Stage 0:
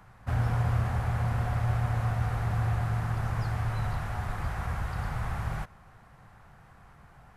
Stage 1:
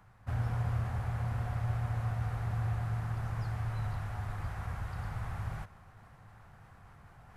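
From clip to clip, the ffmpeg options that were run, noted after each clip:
ffmpeg -i in.wav -af "equalizer=frequency=100:width=5.2:gain=7.5,areverse,acompressor=mode=upward:threshold=-40dB:ratio=2.5,areverse,volume=-7.5dB" out.wav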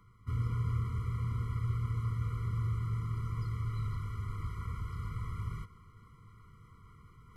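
ffmpeg -i in.wav -af "afftfilt=real='re*eq(mod(floor(b*sr/1024/480),2),0)':imag='im*eq(mod(floor(b*sr/1024/480),2),0)':win_size=1024:overlap=0.75" out.wav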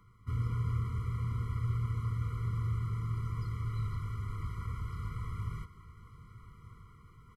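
ffmpeg -i in.wav -af "aecho=1:1:1193:0.158" out.wav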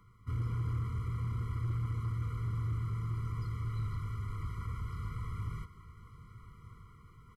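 ffmpeg -i in.wav -af "asoftclip=type=tanh:threshold=-26.5dB" out.wav

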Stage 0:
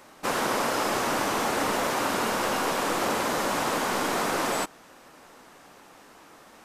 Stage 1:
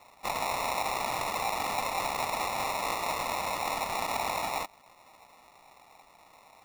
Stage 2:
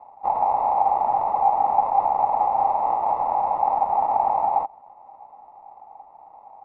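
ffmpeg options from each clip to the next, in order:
ffmpeg -i in.wav -af "acrusher=samples=28:mix=1:aa=0.000001,lowshelf=frequency=580:width_type=q:width=1.5:gain=-12,volume=-2.5dB" out.wav
ffmpeg -i in.wav -af "lowpass=frequency=820:width_type=q:width=9.9,volume=-1.5dB" out.wav

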